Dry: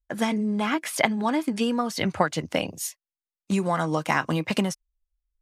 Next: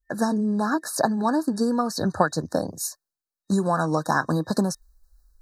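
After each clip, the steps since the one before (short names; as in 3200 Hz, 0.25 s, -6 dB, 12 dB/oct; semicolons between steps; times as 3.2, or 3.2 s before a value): FFT band-reject 1800–3800 Hz; reverse; upward compressor, threshold -40 dBFS; reverse; gain +2 dB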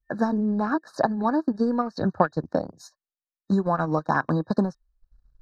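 transient shaper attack +1 dB, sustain -12 dB; air absorption 230 m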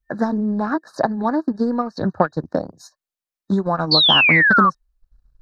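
painted sound fall, 3.91–4.7, 1100–4600 Hz -17 dBFS; Doppler distortion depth 0.11 ms; gain +3 dB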